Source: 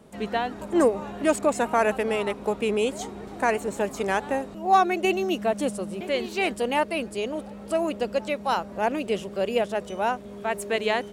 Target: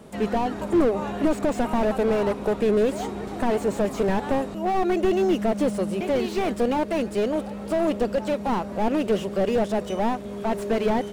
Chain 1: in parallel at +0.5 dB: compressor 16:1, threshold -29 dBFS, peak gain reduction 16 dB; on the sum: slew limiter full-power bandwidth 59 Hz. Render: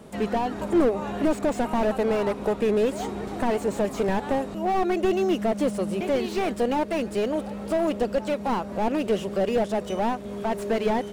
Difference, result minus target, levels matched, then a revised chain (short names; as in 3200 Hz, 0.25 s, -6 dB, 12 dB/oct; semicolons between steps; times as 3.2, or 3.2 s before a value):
compressor: peak gain reduction +7 dB
in parallel at +0.5 dB: compressor 16:1, threshold -21.5 dBFS, peak gain reduction 9 dB; on the sum: slew limiter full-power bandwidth 59 Hz